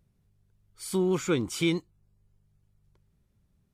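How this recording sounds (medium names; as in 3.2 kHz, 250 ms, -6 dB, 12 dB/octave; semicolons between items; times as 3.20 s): noise floor -72 dBFS; spectral tilt -5.0 dB/octave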